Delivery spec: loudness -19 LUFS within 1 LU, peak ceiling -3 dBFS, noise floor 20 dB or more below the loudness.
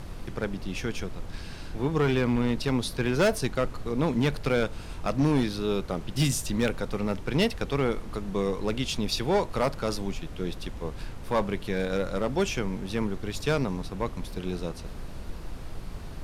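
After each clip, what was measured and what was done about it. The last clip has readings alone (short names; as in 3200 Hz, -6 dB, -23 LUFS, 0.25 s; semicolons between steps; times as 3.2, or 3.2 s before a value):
clipped 0.9%; flat tops at -17.5 dBFS; noise floor -39 dBFS; noise floor target -49 dBFS; loudness -29.0 LUFS; peak -17.5 dBFS; loudness target -19.0 LUFS
-> clip repair -17.5 dBFS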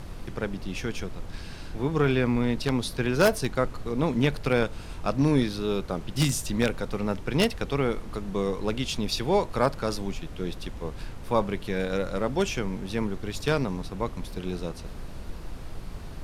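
clipped 0.0%; noise floor -39 dBFS; noise floor target -48 dBFS
-> noise print and reduce 9 dB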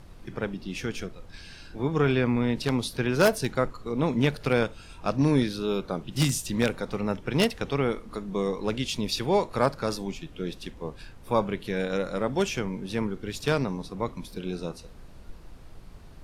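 noise floor -47 dBFS; noise floor target -48 dBFS
-> noise print and reduce 6 dB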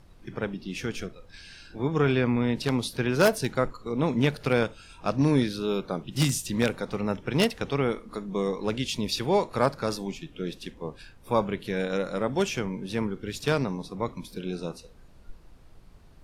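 noise floor -52 dBFS; loudness -28.0 LUFS; peak -8.0 dBFS; loudness target -19.0 LUFS
-> gain +9 dB; limiter -3 dBFS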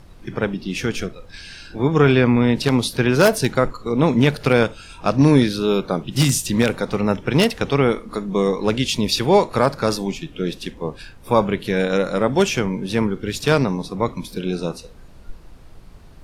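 loudness -19.5 LUFS; peak -3.0 dBFS; noise floor -43 dBFS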